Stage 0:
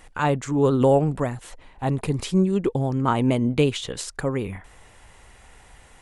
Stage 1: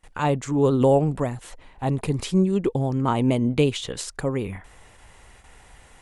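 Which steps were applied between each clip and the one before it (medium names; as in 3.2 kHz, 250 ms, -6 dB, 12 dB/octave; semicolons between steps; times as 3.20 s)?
gate with hold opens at -40 dBFS; dynamic bell 1.5 kHz, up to -5 dB, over -39 dBFS, Q 1.9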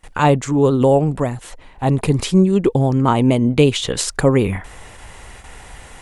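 gain riding within 4 dB 0.5 s; trim +7.5 dB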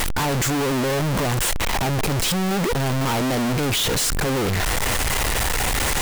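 one-bit comparator; trim -4 dB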